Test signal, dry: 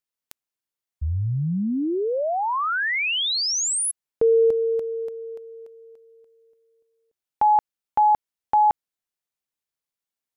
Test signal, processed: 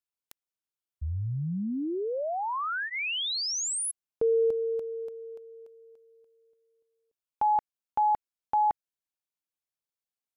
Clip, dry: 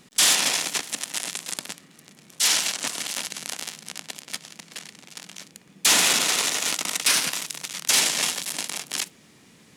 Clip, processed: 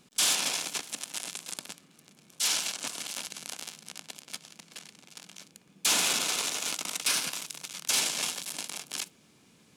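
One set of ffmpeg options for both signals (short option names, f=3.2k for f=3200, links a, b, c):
-af "bandreject=f=1.9k:w=7.6,volume=-7dB"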